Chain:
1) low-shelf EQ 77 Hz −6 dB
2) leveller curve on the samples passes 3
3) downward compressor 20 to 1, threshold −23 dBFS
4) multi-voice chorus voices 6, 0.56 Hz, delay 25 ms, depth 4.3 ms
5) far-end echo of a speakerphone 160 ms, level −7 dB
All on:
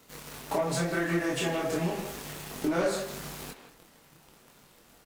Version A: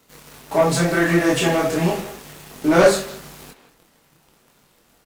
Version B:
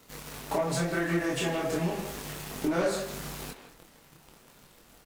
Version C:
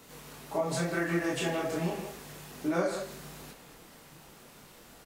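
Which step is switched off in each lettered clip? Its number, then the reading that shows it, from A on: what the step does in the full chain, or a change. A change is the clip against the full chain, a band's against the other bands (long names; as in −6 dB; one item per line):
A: 3, average gain reduction 6.5 dB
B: 1, change in momentary loudness spread −1 LU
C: 2, 8 kHz band −1.5 dB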